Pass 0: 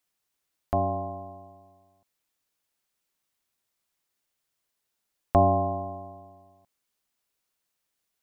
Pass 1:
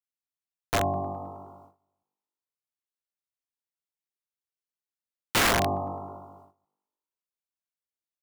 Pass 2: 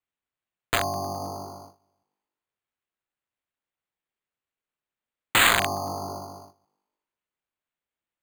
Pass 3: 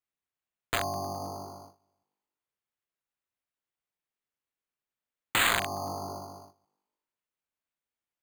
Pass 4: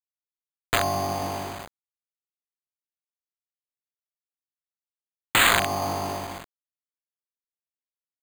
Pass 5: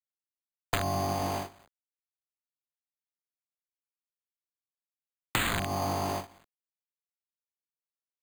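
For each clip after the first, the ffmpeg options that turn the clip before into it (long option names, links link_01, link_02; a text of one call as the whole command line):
ffmpeg -i in.wav -filter_complex "[0:a]asplit=2[link_01][link_02];[link_02]asplit=7[link_03][link_04][link_05][link_06][link_07][link_08][link_09];[link_03]adelay=105,afreqshift=50,volume=-12dB[link_10];[link_04]adelay=210,afreqshift=100,volume=-16.4dB[link_11];[link_05]adelay=315,afreqshift=150,volume=-20.9dB[link_12];[link_06]adelay=420,afreqshift=200,volume=-25.3dB[link_13];[link_07]adelay=525,afreqshift=250,volume=-29.7dB[link_14];[link_08]adelay=630,afreqshift=300,volume=-34.2dB[link_15];[link_09]adelay=735,afreqshift=350,volume=-38.6dB[link_16];[link_10][link_11][link_12][link_13][link_14][link_15][link_16]amix=inputs=7:normalize=0[link_17];[link_01][link_17]amix=inputs=2:normalize=0,agate=range=-19dB:threshold=-52dB:ratio=16:detection=peak,aeval=exprs='(mod(7.08*val(0)+1,2)-1)/7.08':channel_layout=same" out.wav
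ffmpeg -i in.wav -filter_complex "[0:a]lowpass=frequency=4100:width=0.5412,lowpass=frequency=4100:width=1.3066,acrossover=split=1100[link_01][link_02];[link_01]acompressor=threshold=-37dB:ratio=6[link_03];[link_03][link_02]amix=inputs=2:normalize=0,acrusher=samples=8:mix=1:aa=0.000001,volume=7.5dB" out.wav
ffmpeg -i in.wav -af "alimiter=limit=-11dB:level=0:latency=1:release=179,volume=-4dB" out.wav
ffmpeg -i in.wav -filter_complex "[0:a]asplit=2[link_01][link_02];[link_02]asoftclip=type=tanh:threshold=-31dB,volume=-8.5dB[link_03];[link_01][link_03]amix=inputs=2:normalize=0,acrusher=bits=6:mix=0:aa=0.000001,volume=5.5dB" out.wav
ffmpeg -i in.wav -filter_complex "[0:a]agate=range=-21dB:threshold=-31dB:ratio=16:detection=peak,acrossover=split=290[link_01][link_02];[link_02]acompressor=threshold=-28dB:ratio=5[link_03];[link_01][link_03]amix=inputs=2:normalize=0" out.wav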